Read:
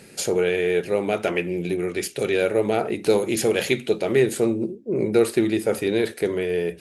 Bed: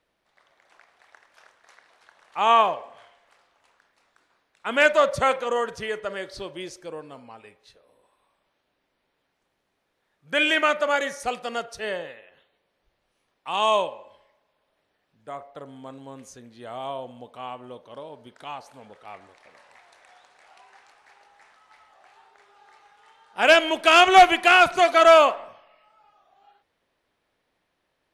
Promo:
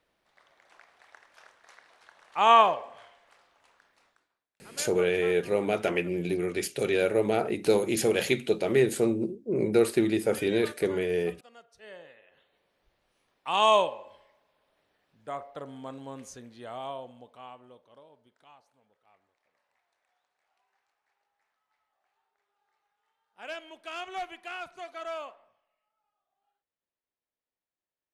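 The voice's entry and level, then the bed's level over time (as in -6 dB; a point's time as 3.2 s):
4.60 s, -4.0 dB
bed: 4.06 s -0.5 dB
4.48 s -23.5 dB
11.66 s -23.5 dB
12.58 s 0 dB
16.37 s 0 dB
18.89 s -23.5 dB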